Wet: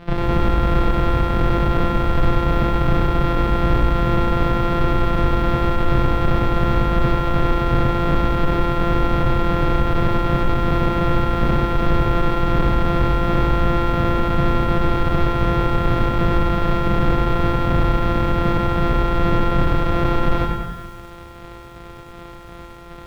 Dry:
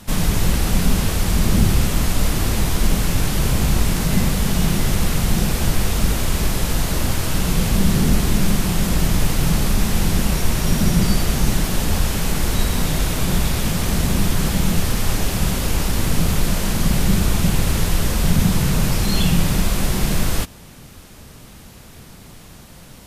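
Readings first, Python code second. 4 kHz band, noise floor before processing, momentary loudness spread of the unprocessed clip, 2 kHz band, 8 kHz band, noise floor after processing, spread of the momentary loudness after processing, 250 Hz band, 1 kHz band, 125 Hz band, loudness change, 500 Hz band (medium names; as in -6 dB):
-7.0 dB, -42 dBFS, 3 LU, 0.0 dB, under -20 dB, -38 dBFS, 4 LU, 0.0 dB, +8.5 dB, -0.5 dB, +0.5 dB, +6.5 dB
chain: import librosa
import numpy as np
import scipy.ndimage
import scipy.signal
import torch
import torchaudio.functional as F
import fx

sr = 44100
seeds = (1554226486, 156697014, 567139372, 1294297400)

y = np.r_[np.sort(x[:len(x) // 256 * 256].reshape(-1, 256), axis=1).ravel(), x[len(x) // 256 * 256:]]
y = fx.rider(y, sr, range_db=10, speed_s=0.5)
y = y * (1.0 - 0.39 / 2.0 + 0.39 / 2.0 * np.cos(2.0 * np.pi * 2.7 * (np.arange(len(y)) / sr)))
y = fx.high_shelf(y, sr, hz=2400.0, db=8.0)
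y = fx.rev_fdn(y, sr, rt60_s=1.2, lf_ratio=1.35, hf_ratio=0.5, size_ms=43.0, drr_db=5.5)
y = np.clip(10.0 ** (14.0 / 20.0) * y, -1.0, 1.0) / 10.0 ** (14.0 / 20.0)
y = fx.air_absorb(y, sr, metres=400.0)
y = fx.echo_crushed(y, sr, ms=95, feedback_pct=55, bits=8, wet_db=-6.0)
y = y * 10.0 ** (2.0 / 20.0)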